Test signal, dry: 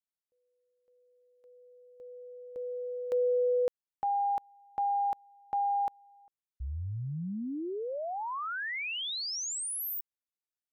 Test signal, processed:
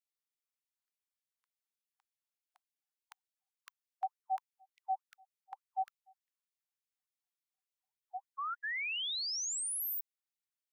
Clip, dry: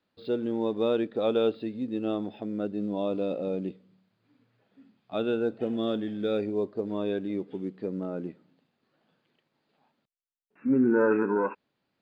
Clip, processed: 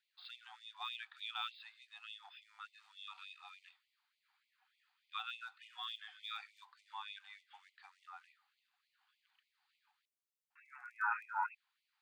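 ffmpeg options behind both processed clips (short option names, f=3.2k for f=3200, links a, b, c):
-af "afreqshift=-45,afftfilt=real='re*gte(b*sr/1024,710*pow(2000/710,0.5+0.5*sin(2*PI*3.4*pts/sr)))':imag='im*gte(b*sr/1024,710*pow(2000/710,0.5+0.5*sin(2*PI*3.4*pts/sr)))':win_size=1024:overlap=0.75,volume=-1.5dB"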